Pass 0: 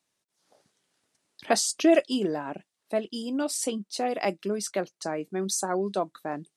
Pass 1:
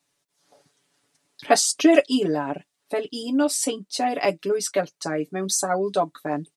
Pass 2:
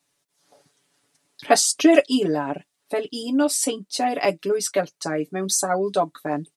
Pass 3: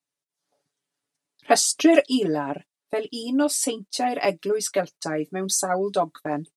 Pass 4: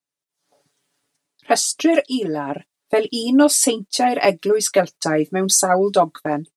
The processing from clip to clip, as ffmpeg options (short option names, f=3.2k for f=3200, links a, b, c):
-af "aecho=1:1:7:0.88,volume=3dB"
-af "equalizer=f=11k:w=1.5:g=2.5,volume=1dB"
-af "agate=range=-15dB:threshold=-38dB:ratio=16:detection=peak,volume=-1.5dB"
-af "dynaudnorm=f=180:g=5:m=15dB,volume=-2dB"